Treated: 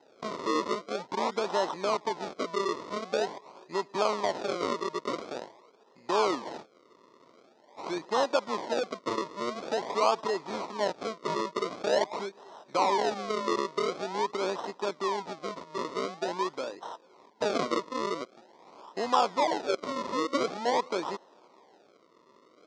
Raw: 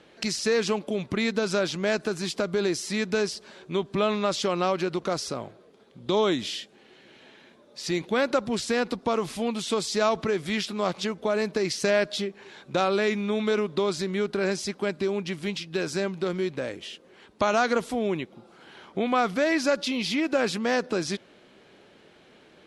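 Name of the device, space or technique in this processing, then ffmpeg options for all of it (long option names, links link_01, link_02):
circuit-bent sampling toy: -filter_complex "[0:a]asettb=1/sr,asplit=3[link_01][link_02][link_03];[link_01]atrim=end=19.404[link_04];[link_02]atrim=start=19.4:end=19.84,asetpts=PTS-STARTPTS,afade=type=in:duration=0.004:curve=qsin,afade=type=out:start_time=0.436:duration=0.004:curve=qsin,highpass=400[link_05];[link_03]atrim=start=19.836[link_06];[link_04][link_05]acrossfade=duration=0.004:curve1=hsin:curve2=qsin[link_07];[link_07][link_06]acrossfade=duration=0.004:curve1=qsin:curve2=hsin,acrusher=samples=38:mix=1:aa=0.000001:lfo=1:lforange=38:lforate=0.46,highpass=400,equalizer=frequency=980:width_type=q:width=4:gain=9,equalizer=frequency=1600:width_type=q:width=4:gain=-9,equalizer=frequency=2800:width_type=q:width=4:gain=-8,lowpass=frequency=5800:width=0.5412,lowpass=frequency=5800:width=1.3066,volume=-1.5dB"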